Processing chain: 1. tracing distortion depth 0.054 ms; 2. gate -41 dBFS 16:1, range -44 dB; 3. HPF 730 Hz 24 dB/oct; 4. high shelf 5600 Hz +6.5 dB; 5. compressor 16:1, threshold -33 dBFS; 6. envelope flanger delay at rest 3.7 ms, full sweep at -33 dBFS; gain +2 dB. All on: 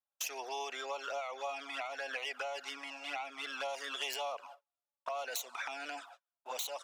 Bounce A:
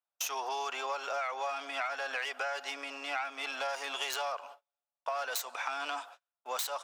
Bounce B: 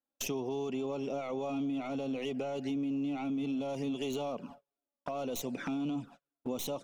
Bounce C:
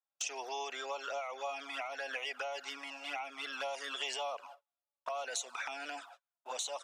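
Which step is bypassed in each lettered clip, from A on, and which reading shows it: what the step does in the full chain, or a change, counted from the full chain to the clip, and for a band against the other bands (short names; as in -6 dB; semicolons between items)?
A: 6, crest factor change -2.0 dB; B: 3, 250 Hz band +27.5 dB; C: 1, crest factor change -2.0 dB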